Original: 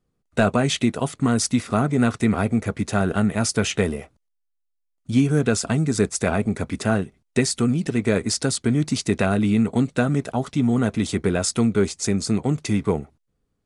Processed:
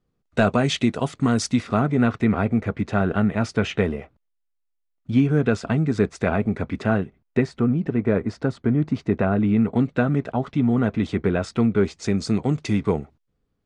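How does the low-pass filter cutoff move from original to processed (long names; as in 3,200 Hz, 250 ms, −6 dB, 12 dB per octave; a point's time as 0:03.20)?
0:01.42 5,700 Hz
0:02.09 2,800 Hz
0:06.98 2,800 Hz
0:07.65 1,500 Hz
0:09.30 1,500 Hz
0:09.80 2,600 Hz
0:11.79 2,600 Hz
0:12.26 5,100 Hz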